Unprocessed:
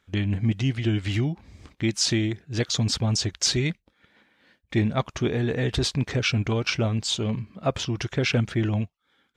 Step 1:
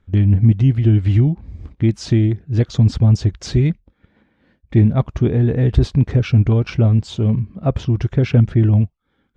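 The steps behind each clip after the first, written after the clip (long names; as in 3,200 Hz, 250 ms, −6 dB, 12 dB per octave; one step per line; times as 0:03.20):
spectral tilt −4 dB per octave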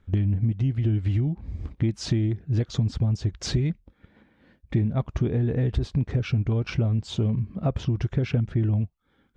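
downward compressor 6 to 1, threshold −21 dBFS, peak gain reduction 13.5 dB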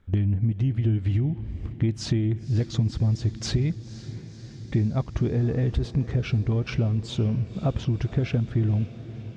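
feedback delay with all-pass diffusion 521 ms, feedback 70%, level −16 dB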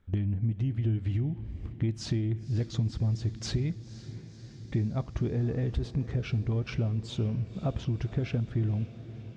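dense smooth reverb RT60 0.55 s, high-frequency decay 0.9×, DRR 20 dB
level −5.5 dB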